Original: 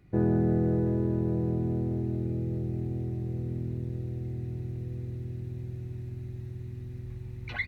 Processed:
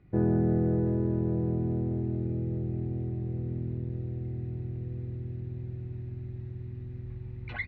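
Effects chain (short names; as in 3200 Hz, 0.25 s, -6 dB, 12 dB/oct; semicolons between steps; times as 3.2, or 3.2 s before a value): air absorption 270 m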